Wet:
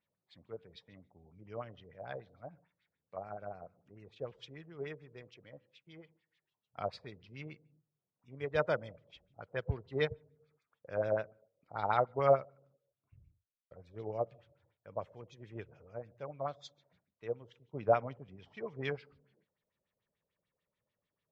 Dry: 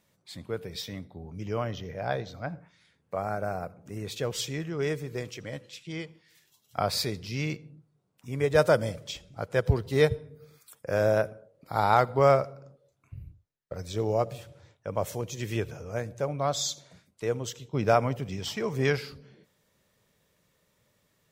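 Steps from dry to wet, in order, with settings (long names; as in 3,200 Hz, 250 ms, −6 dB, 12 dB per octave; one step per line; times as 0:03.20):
auto-filter low-pass sine 6.8 Hz 570–3,700 Hz
expander for the loud parts 1.5 to 1, over −34 dBFS
level −8.5 dB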